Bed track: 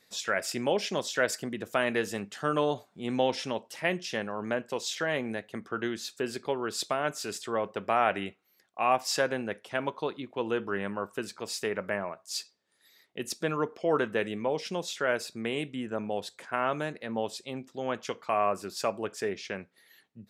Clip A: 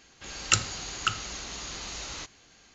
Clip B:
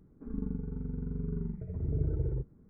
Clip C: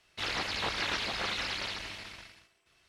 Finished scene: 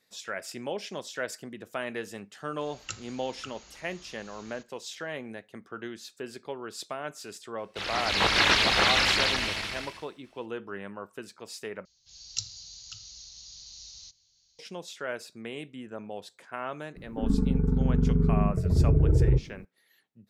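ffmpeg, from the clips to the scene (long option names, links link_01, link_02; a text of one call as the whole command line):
ffmpeg -i bed.wav -i cue0.wav -i cue1.wav -i cue2.wav -filter_complex "[1:a]asplit=2[link_01][link_02];[0:a]volume=-6.5dB[link_03];[3:a]dynaudnorm=framelen=120:gausssize=9:maxgain=14.5dB[link_04];[link_02]firequalizer=gain_entry='entry(100,0);entry(170,-6);entry(240,-23);entry(760,-15);entry(1400,-19);entry(2800,-6);entry(4100,10);entry(5800,12);entry(9300,-17)':delay=0.05:min_phase=1[link_05];[2:a]alimiter=level_in=25.5dB:limit=-1dB:release=50:level=0:latency=1[link_06];[link_03]asplit=2[link_07][link_08];[link_07]atrim=end=11.854[link_09];[link_05]atrim=end=2.74,asetpts=PTS-STARTPTS,volume=-15dB[link_10];[link_08]atrim=start=14.586[link_11];[link_01]atrim=end=2.74,asetpts=PTS-STARTPTS,volume=-15.5dB,afade=type=in:duration=0.004:curve=hsin,afade=type=out:start_time=2.736:duration=0.004:curve=hsin,adelay=2370[link_12];[link_04]atrim=end=2.88,asetpts=PTS-STARTPTS,volume=-3dB,afade=type=in:duration=0.004:curve=hsin,afade=type=out:start_time=2.876:duration=0.004:curve=hsin,adelay=7580[link_13];[link_06]atrim=end=2.69,asetpts=PTS-STARTPTS,volume=-12.5dB,afade=type=in:duration=0.004:curve=hsin,afade=type=out:start_time=2.686:duration=0.004:curve=hsin,adelay=16960[link_14];[link_09][link_10]acrossfade=duration=0.004:curve1=hsin:curve2=hsin[link_15];[link_15][link_11]acrossfade=duration=0.004:curve1=hsin:curve2=hsin[link_16];[link_16][link_12][link_13][link_14]amix=inputs=4:normalize=0" out.wav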